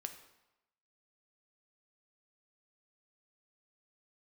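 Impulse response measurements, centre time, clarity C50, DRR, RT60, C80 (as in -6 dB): 14 ms, 10.0 dB, 6.5 dB, 0.95 s, 12.0 dB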